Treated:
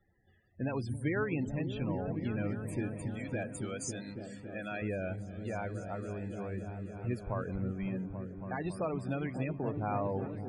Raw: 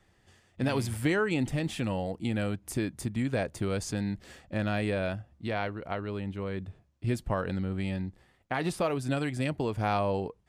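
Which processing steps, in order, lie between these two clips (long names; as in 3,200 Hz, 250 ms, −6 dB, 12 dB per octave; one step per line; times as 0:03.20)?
0:03.13–0:04.82: RIAA equalisation recording
spectral peaks only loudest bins 32
on a send: echo whose low-pass opens from repeat to repeat 277 ms, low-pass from 200 Hz, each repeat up 1 octave, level −3 dB
on the sum: level −6 dB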